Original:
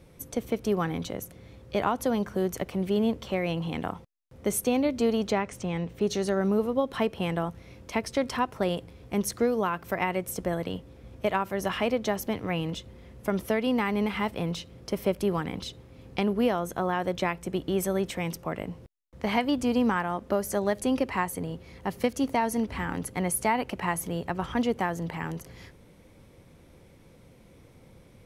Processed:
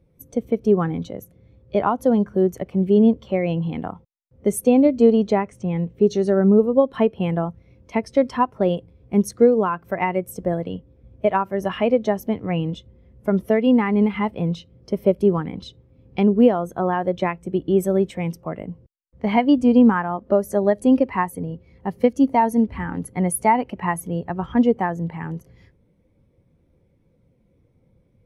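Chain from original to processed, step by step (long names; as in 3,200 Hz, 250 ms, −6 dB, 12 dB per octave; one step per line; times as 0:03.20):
every bin expanded away from the loudest bin 1.5 to 1
level +8 dB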